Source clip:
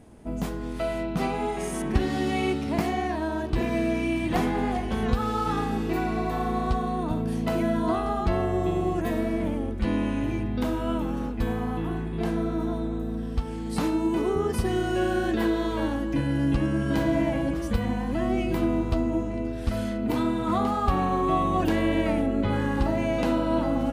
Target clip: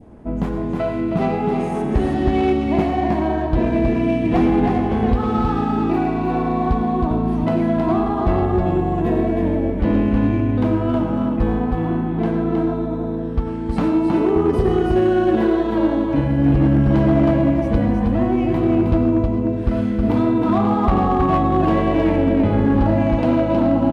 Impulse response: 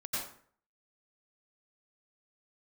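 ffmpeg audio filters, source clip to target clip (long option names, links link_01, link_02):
-filter_complex "[0:a]aemphasis=mode=reproduction:type=75kf,asplit=2[link_01][link_02];[1:a]atrim=start_sample=2205,lowshelf=frequency=380:gain=-6.5[link_03];[link_02][link_03]afir=irnorm=-1:irlink=0,volume=-8dB[link_04];[link_01][link_04]amix=inputs=2:normalize=0,adynamicequalizer=threshold=0.00708:dfrequency=1500:dqfactor=1.1:tfrequency=1500:tqfactor=1.1:attack=5:release=100:ratio=0.375:range=3:mode=cutabove:tftype=bell,aecho=1:1:317:0.631,volume=16dB,asoftclip=hard,volume=-16dB,asplit=2[link_05][link_06];[link_06]adynamicsmooth=sensitivity=4:basefreq=2300,volume=1dB[link_07];[link_05][link_07]amix=inputs=2:normalize=0"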